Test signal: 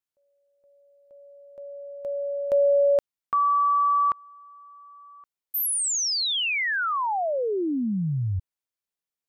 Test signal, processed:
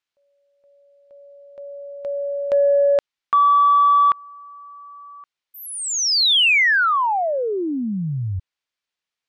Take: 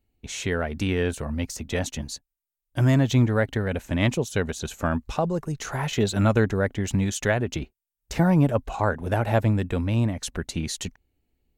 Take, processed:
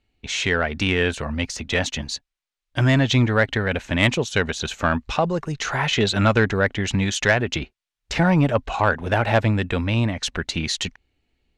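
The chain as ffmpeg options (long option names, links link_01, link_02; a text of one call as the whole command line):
ffmpeg -i in.wav -af "lowpass=4000,tiltshelf=frequency=1100:gain=-6,asoftclip=type=tanh:threshold=-13dB,volume=7.5dB" out.wav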